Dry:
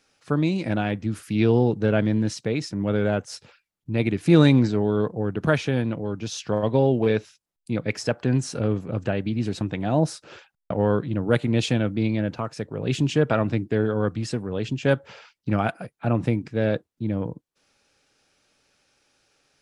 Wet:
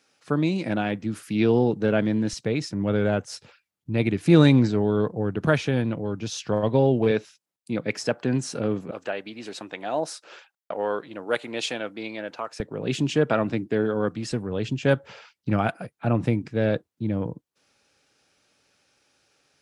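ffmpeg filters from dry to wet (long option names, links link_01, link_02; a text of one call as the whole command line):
ffmpeg -i in.wav -af "asetnsamples=nb_out_samples=441:pad=0,asendcmd='2.33 highpass f 60;7.11 highpass f 160;8.91 highpass f 520;12.6 highpass f 160;14.32 highpass f 60',highpass=140" out.wav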